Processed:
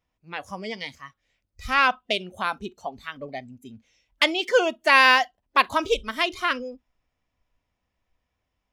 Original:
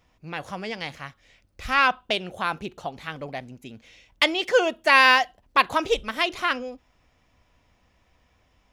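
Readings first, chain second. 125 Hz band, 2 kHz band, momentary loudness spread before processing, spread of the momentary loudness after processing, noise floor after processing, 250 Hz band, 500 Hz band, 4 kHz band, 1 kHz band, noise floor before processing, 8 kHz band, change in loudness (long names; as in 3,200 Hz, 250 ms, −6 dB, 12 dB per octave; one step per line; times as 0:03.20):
−4.5 dB, 0.0 dB, 19 LU, 20 LU, −80 dBFS, −0.5 dB, 0.0 dB, 0.0 dB, 0.0 dB, −65 dBFS, 0.0 dB, +0.5 dB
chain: noise reduction from a noise print of the clip's start 15 dB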